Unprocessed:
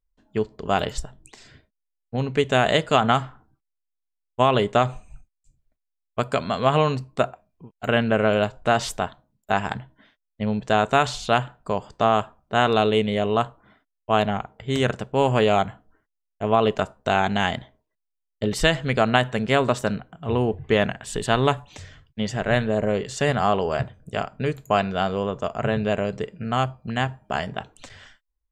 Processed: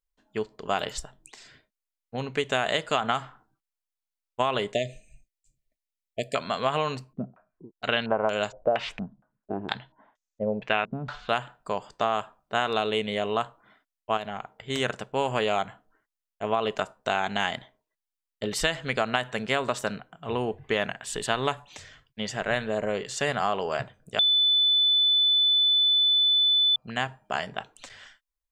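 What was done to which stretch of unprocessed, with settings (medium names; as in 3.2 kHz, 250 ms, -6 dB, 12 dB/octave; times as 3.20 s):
4.73–6.35 s: brick-wall FIR band-stop 710–1700 Hz
7.13–11.29 s: step-sequenced low-pass 4.3 Hz 210–6600 Hz
14.17–14.70 s: compression 2.5:1, threshold -27 dBFS
24.19–26.76 s: bleep 3.5 kHz -12 dBFS
whole clip: bass shelf 480 Hz -9.5 dB; compression 4:1, threshold -21 dBFS; peaking EQ 77 Hz -7.5 dB 0.69 oct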